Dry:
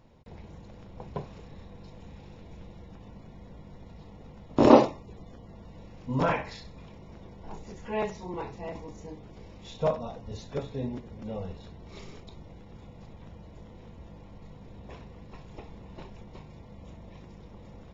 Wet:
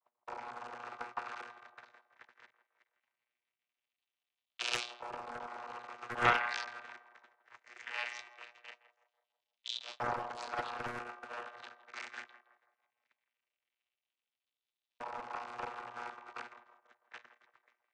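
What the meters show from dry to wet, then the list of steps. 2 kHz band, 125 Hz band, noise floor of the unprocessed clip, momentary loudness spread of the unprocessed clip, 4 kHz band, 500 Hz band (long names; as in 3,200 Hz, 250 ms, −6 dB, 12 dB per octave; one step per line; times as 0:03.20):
+4.5 dB, −18.0 dB, −49 dBFS, 21 LU, +3.0 dB, −17.0 dB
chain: sub-harmonics by changed cycles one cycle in 2, muted
dynamic equaliser 240 Hz, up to −4 dB, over −49 dBFS, Q 2.1
in parallel at +2.5 dB: compressor whose output falls as the input rises −49 dBFS, ratio −1
on the sum: channel vocoder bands 32, saw 120 Hz
auto-filter high-pass saw up 0.2 Hz 930–3,800 Hz
noise gate −55 dBFS, range −37 dB
on a send: feedback echo with a band-pass in the loop 164 ms, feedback 52%, band-pass 700 Hz, level −10.5 dB
on the sum: highs frequency-modulated by the lows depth 0.83 ms
level +9 dB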